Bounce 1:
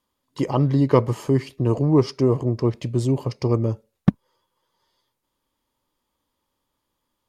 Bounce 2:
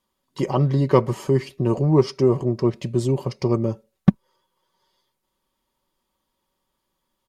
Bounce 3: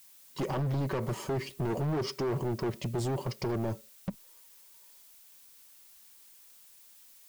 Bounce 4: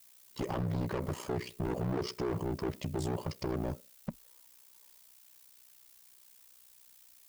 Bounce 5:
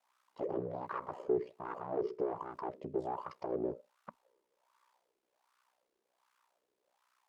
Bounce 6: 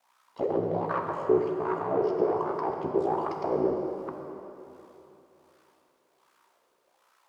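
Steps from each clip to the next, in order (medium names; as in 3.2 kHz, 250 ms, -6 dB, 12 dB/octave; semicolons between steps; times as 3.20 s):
comb 5.3 ms, depth 47%
added noise blue -53 dBFS; peak limiter -13 dBFS, peak gain reduction 11.5 dB; overload inside the chain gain 24.5 dB; trim -3.5 dB
ring modulator 31 Hz
wah-wah 1.3 Hz 400–1200 Hz, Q 4.1; trim +8 dB
plate-style reverb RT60 3.2 s, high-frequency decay 0.9×, DRR 2 dB; trim +8.5 dB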